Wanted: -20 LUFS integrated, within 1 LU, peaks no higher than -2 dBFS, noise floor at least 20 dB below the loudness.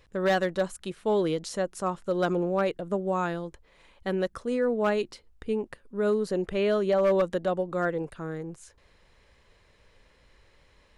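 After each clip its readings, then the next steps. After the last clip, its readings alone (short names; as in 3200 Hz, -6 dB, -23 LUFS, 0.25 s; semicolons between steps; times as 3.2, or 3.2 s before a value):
clipped 0.3%; flat tops at -17.5 dBFS; loudness -28.5 LUFS; peak -17.5 dBFS; loudness target -20.0 LUFS
-> clip repair -17.5 dBFS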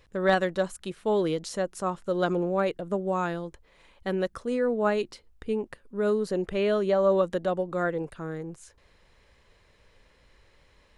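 clipped 0.0%; loudness -28.0 LUFS; peak -8.5 dBFS; loudness target -20.0 LUFS
-> gain +8 dB; limiter -2 dBFS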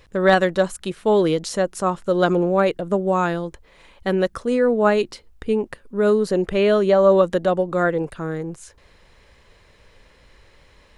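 loudness -20.0 LUFS; peak -2.0 dBFS; noise floor -54 dBFS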